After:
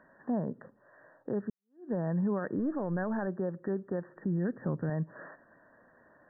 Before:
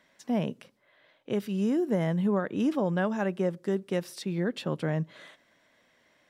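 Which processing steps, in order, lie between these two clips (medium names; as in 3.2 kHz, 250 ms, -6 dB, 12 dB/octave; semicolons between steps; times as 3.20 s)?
1.50–1.95 s: fade in exponential; 2.59–3.27 s: partial rectifier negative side -3 dB; 4.16–4.90 s: bass shelf 200 Hz +11.5 dB; compression 2:1, threshold -38 dBFS, peak gain reduction 10 dB; peak limiter -30.5 dBFS, peak gain reduction 6.5 dB; brick-wall FIR low-pass 1.9 kHz; trim +6.5 dB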